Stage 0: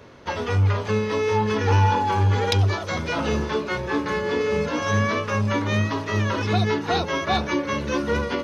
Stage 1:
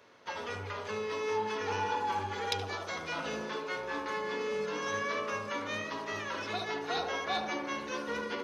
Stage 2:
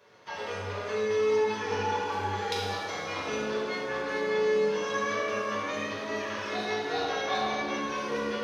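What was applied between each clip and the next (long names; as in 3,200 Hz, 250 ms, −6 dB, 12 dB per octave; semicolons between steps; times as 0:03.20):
high-pass filter 800 Hz 6 dB per octave; feedback echo with a low-pass in the loop 74 ms, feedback 76%, low-pass 1,100 Hz, level −3.5 dB; level −8.5 dB
convolution reverb RT60 1.6 s, pre-delay 3 ms, DRR −5.5 dB; level −3.5 dB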